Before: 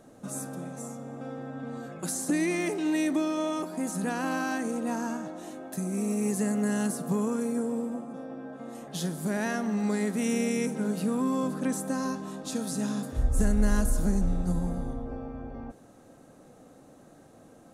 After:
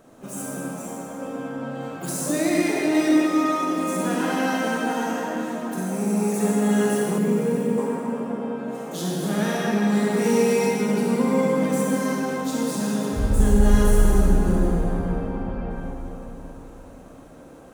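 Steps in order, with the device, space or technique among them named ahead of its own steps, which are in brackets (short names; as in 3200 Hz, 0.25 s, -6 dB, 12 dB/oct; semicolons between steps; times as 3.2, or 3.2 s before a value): shimmer-style reverb (harmoniser +12 st -8 dB; reverb RT60 4.1 s, pre-delay 35 ms, DRR -5 dB); 7.18–7.78 graphic EQ 125/1000/8000 Hz +7/-10/-5 dB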